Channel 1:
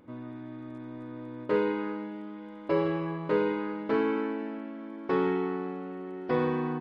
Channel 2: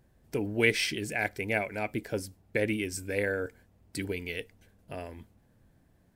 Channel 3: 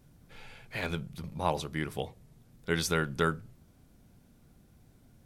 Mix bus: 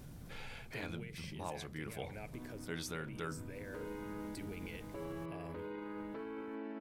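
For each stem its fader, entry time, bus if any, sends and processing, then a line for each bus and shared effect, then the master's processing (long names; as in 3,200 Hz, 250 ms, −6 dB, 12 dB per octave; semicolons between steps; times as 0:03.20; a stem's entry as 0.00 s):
−10.0 dB, 2.25 s, bus A, no send, compressor whose output falls as the input rises −28 dBFS
+1.5 dB, 0.40 s, bus A, no send, downward compressor, threshold −38 dBFS, peak gain reduction 18 dB; automatic ducking −6 dB, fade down 1.95 s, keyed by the third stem
−12.5 dB, 0.00 s, no bus, no send, envelope flattener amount 50%
bus A: 0.0 dB, brickwall limiter −39 dBFS, peak gain reduction 11.5 dB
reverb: not used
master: speech leveller within 3 dB 0.5 s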